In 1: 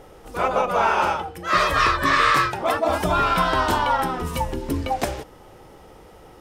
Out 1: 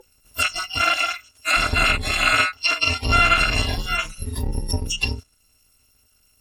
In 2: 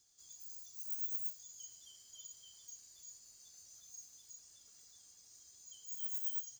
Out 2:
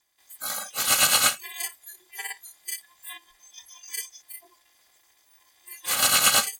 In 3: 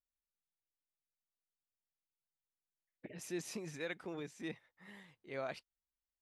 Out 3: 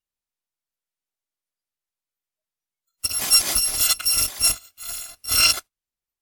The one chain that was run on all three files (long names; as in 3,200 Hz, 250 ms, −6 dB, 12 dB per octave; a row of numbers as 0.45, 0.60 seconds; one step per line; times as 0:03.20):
samples in bit-reversed order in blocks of 256 samples
noise reduction from a noise print of the clip's start 22 dB
treble cut that deepens with the level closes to 2,600 Hz, closed at −20.5 dBFS
normalise the peak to −6 dBFS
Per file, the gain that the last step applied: +9.0, +22.0, +26.0 decibels